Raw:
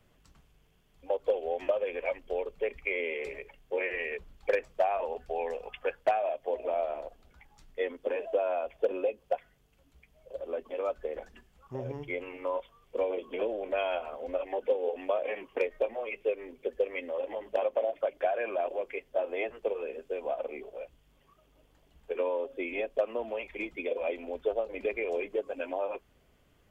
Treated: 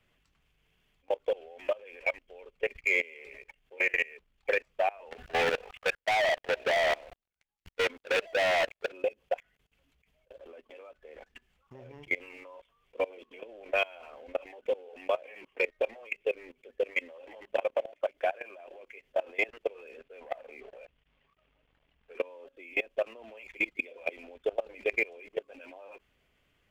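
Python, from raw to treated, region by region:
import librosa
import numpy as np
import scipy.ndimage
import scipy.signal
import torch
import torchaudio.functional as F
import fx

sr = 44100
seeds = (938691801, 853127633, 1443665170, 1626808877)

y = fx.chain(x, sr, fx.level_steps(step_db=18),
    fx.leveller(passes=5), at=(5.11, 8.92))
y = fx.chain(y, sr, fx.lowpass(hz=3100.0, slope=12),
    fx.peak_eq(hz=340.0, db=-6.5, octaves=0.26),
    fx.leveller(passes=1), at=(20.0, 22.19))
y = fx.peak_eq(y, sr, hz=2400.0, db=10.0, octaves=1.5)
y = fx.leveller(y, sr, passes=1)
y = fx.level_steps(y, sr, step_db=23)
y = F.gain(torch.from_numpy(y), -2.5).numpy()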